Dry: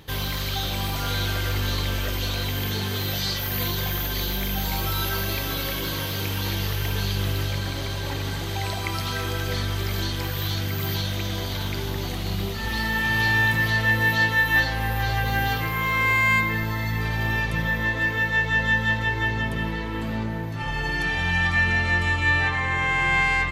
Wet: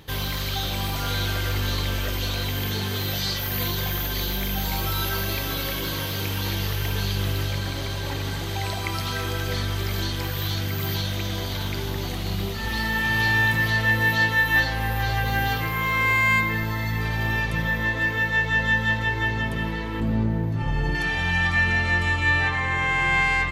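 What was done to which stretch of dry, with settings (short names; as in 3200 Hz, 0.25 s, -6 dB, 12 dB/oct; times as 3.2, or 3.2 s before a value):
20–20.95 tilt shelf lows +6.5 dB, about 650 Hz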